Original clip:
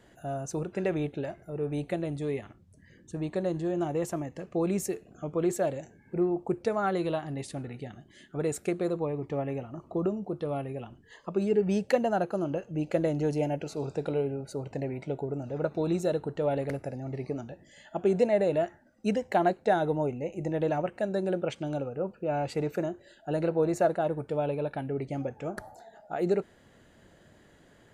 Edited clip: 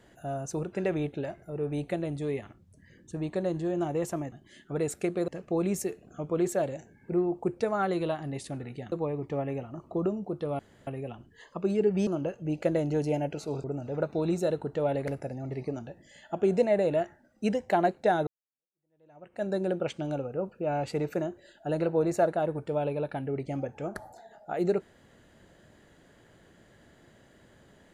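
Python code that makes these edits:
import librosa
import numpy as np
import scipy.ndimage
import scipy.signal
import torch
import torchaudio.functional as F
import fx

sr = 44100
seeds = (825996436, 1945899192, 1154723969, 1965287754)

y = fx.edit(x, sr, fx.move(start_s=7.96, length_s=0.96, to_s=4.32),
    fx.insert_room_tone(at_s=10.59, length_s=0.28),
    fx.cut(start_s=11.79, length_s=0.57),
    fx.cut(start_s=13.93, length_s=1.33),
    fx.fade_in_span(start_s=19.89, length_s=1.17, curve='exp'), tone=tone)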